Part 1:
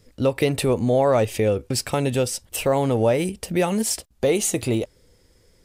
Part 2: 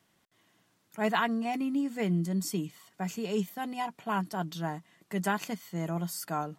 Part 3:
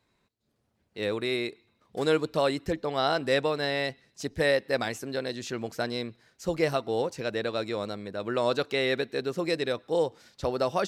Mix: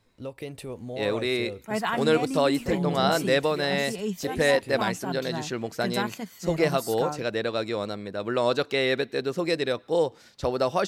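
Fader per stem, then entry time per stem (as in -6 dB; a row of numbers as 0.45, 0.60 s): -16.5, 0.0, +2.5 dB; 0.00, 0.70, 0.00 s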